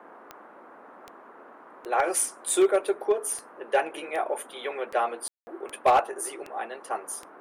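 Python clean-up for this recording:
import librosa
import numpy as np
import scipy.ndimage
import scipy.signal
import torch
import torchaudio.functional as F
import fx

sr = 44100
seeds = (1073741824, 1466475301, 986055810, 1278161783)

y = fx.fix_declip(x, sr, threshold_db=-14.0)
y = fx.fix_declick_ar(y, sr, threshold=10.0)
y = fx.fix_ambience(y, sr, seeds[0], print_start_s=1.21, print_end_s=1.71, start_s=5.28, end_s=5.47)
y = fx.noise_reduce(y, sr, print_start_s=1.21, print_end_s=1.71, reduce_db=21.0)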